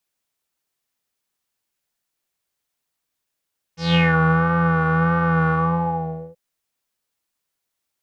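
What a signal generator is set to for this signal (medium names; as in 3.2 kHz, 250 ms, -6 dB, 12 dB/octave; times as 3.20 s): synth patch with vibrato E3, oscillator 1 square, interval 0 st, detune 29 cents, filter lowpass, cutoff 510 Hz, Q 5.9, filter envelope 3.5 oct, filter decay 0.39 s, attack 179 ms, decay 0.57 s, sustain -3 dB, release 0.84 s, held 1.74 s, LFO 1.6 Hz, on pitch 42 cents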